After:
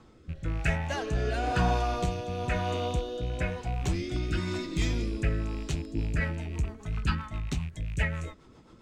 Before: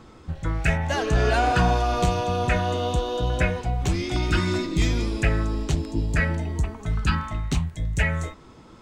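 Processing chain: rattling part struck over -26 dBFS, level -29 dBFS; rotary speaker horn 1 Hz, later 7.5 Hz, at 5.58; gain -5 dB

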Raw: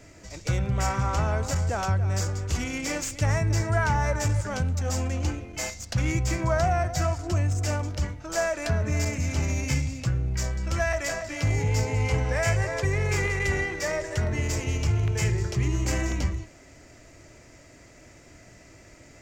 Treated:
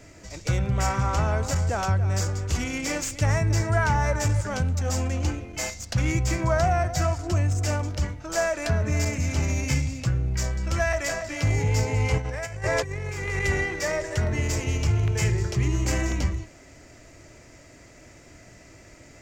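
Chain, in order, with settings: 12.18–13.45 negative-ratio compressor -29 dBFS, ratio -0.5; gain +1.5 dB

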